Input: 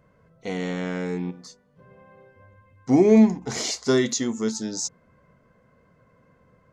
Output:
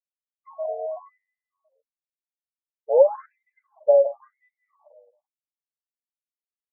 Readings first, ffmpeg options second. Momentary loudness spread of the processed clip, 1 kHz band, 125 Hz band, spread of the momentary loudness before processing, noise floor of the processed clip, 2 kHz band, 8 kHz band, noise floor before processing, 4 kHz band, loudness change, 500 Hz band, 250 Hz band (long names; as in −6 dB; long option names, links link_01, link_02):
16 LU, +1.0 dB, below −40 dB, 16 LU, below −85 dBFS, below −25 dB, below −40 dB, −62 dBFS, below −40 dB, +1.0 dB, +3.5 dB, below −40 dB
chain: -filter_complex "[0:a]afftfilt=real='re*gte(hypot(re,im),0.112)':imag='im*gte(hypot(re,im),0.112)':win_size=1024:overlap=0.75,equalizer=frequency=100:width_type=o:width=0.67:gain=-6,equalizer=frequency=400:width_type=o:width=0.67:gain=9,equalizer=frequency=1000:width_type=o:width=0.67:gain=4,equalizer=frequency=6300:width_type=o:width=0.67:gain=3,afwtdn=0.0501,adynamicequalizer=threshold=0.00224:dfrequency=4700:dqfactor=2.4:tfrequency=4700:tqfactor=2.4:attack=5:release=100:ratio=0.375:range=2.5:mode=cutabove:tftype=bell,acompressor=threshold=-16dB:ratio=1.5,afreqshift=180,asplit=2[link_01][link_02];[link_02]adelay=169,lowpass=frequency=3000:poles=1,volume=-13.5dB,asplit=2[link_03][link_04];[link_04]adelay=169,lowpass=frequency=3000:poles=1,volume=0.31,asplit=2[link_05][link_06];[link_06]adelay=169,lowpass=frequency=3000:poles=1,volume=0.31[link_07];[link_01][link_03][link_05][link_07]amix=inputs=4:normalize=0,afftfilt=real='re*between(b*sr/1024,610*pow(2700/610,0.5+0.5*sin(2*PI*0.94*pts/sr))/1.41,610*pow(2700/610,0.5+0.5*sin(2*PI*0.94*pts/sr))*1.41)':imag='im*between(b*sr/1024,610*pow(2700/610,0.5+0.5*sin(2*PI*0.94*pts/sr))/1.41,610*pow(2700/610,0.5+0.5*sin(2*PI*0.94*pts/sr))*1.41)':win_size=1024:overlap=0.75"